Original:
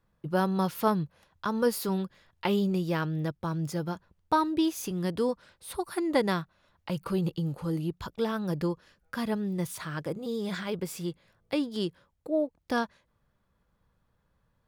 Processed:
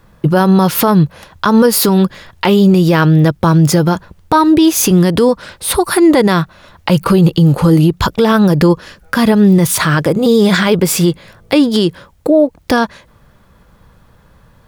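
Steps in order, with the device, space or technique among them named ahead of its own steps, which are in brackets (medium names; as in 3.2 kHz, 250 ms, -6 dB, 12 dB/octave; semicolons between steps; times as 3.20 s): loud club master (compression 2.5:1, threshold -29 dBFS, peak gain reduction 7 dB; hard clipper -17 dBFS, distortion -48 dB; loudness maximiser +26.5 dB); trim -1 dB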